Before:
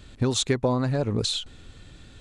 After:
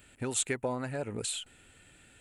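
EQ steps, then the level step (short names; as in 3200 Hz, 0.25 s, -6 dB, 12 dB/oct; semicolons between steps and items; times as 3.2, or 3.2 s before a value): tilt +3 dB/oct; band shelf 4700 Hz -13.5 dB 1.1 oct; notch 1100 Hz, Q 5.8; -5.5 dB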